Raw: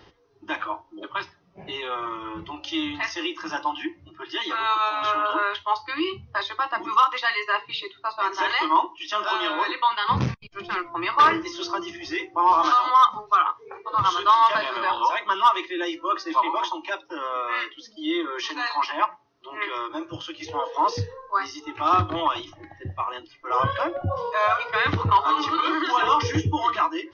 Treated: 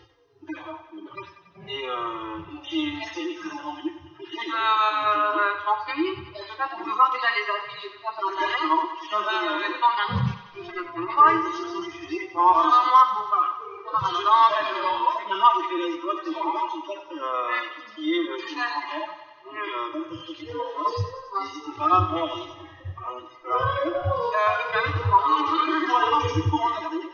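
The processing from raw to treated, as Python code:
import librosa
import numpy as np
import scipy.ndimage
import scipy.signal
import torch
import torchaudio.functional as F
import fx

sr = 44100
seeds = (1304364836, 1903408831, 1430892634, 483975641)

y = fx.hpss_only(x, sr, part='harmonic')
y = fx.echo_thinned(y, sr, ms=93, feedback_pct=67, hz=340.0, wet_db=-11.5)
y = fx.band_squash(y, sr, depth_pct=70, at=(23.55, 24.47))
y = y * librosa.db_to_amplitude(1.5)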